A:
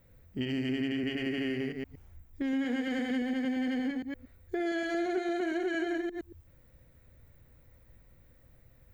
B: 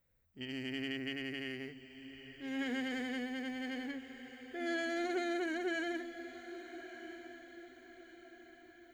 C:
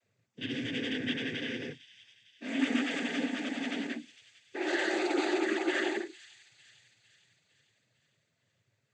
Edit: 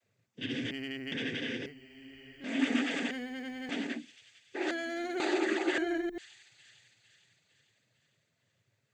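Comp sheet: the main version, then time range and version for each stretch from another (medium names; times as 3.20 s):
C
0.71–1.12 s: from B
1.66–2.44 s: from B
3.11–3.69 s: from B
4.71–5.20 s: from B
5.78–6.18 s: from A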